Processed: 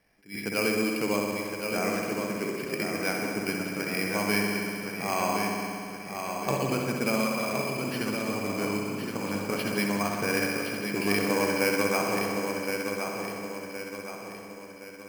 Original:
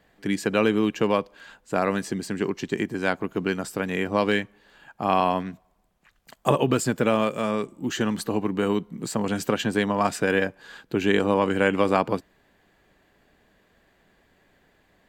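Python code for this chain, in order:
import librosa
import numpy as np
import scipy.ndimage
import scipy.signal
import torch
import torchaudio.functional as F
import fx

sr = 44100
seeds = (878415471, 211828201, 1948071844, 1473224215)

y = fx.peak_eq(x, sr, hz=2300.0, db=14.0, octaves=0.21)
y = fx.rev_spring(y, sr, rt60_s=2.5, pass_ms=(59,), chirp_ms=40, drr_db=0.0)
y = np.repeat(scipy.signal.resample_poly(y, 1, 6), 6)[:len(y)]
y = fx.echo_feedback(y, sr, ms=1068, feedback_pct=45, wet_db=-6)
y = fx.attack_slew(y, sr, db_per_s=220.0)
y = y * librosa.db_to_amplitude(-9.0)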